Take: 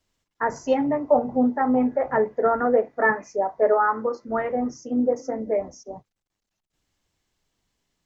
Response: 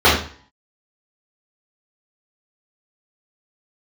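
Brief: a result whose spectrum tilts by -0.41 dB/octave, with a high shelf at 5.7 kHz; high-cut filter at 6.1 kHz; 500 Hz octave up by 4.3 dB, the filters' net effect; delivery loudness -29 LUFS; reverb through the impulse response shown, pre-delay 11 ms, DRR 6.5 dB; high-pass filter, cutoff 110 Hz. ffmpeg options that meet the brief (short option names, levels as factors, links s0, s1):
-filter_complex "[0:a]highpass=110,lowpass=6100,equalizer=f=500:t=o:g=5,highshelf=f=5700:g=-7.5,asplit=2[s0][s1];[1:a]atrim=start_sample=2205,adelay=11[s2];[s1][s2]afir=irnorm=-1:irlink=0,volume=0.02[s3];[s0][s3]amix=inputs=2:normalize=0,volume=0.335"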